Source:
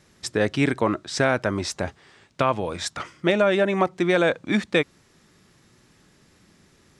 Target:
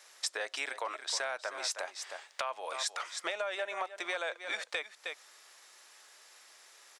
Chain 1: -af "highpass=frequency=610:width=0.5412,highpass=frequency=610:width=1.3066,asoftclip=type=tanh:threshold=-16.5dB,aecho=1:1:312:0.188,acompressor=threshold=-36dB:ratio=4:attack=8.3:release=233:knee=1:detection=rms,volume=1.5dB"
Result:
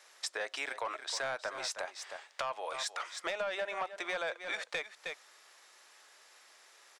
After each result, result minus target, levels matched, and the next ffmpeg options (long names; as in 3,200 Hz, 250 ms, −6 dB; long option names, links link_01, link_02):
soft clipping: distortion +19 dB; 8,000 Hz band −3.0 dB
-af "highpass=frequency=610:width=0.5412,highpass=frequency=610:width=1.3066,asoftclip=type=tanh:threshold=-4.5dB,aecho=1:1:312:0.188,acompressor=threshold=-36dB:ratio=4:attack=8.3:release=233:knee=1:detection=rms,volume=1.5dB"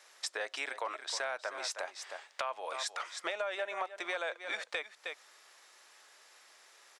8,000 Hz band −2.5 dB
-af "highpass=frequency=610:width=0.5412,highpass=frequency=610:width=1.3066,asoftclip=type=tanh:threshold=-4.5dB,aecho=1:1:312:0.188,acompressor=threshold=-36dB:ratio=4:attack=8.3:release=233:knee=1:detection=rms,highshelf=frequency=4200:gain=5.5,volume=1.5dB"